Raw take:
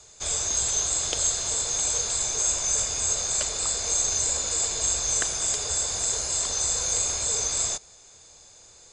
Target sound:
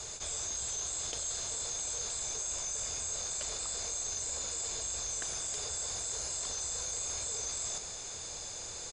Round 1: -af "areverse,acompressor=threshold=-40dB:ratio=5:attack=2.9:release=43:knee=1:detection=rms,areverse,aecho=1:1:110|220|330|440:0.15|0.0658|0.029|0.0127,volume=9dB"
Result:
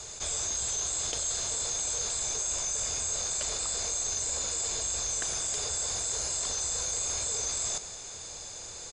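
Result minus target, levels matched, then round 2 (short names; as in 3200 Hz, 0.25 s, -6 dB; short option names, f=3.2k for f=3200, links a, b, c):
compressor: peak gain reduction -5 dB
-af "areverse,acompressor=threshold=-46.5dB:ratio=5:attack=2.9:release=43:knee=1:detection=rms,areverse,aecho=1:1:110|220|330|440:0.15|0.0658|0.029|0.0127,volume=9dB"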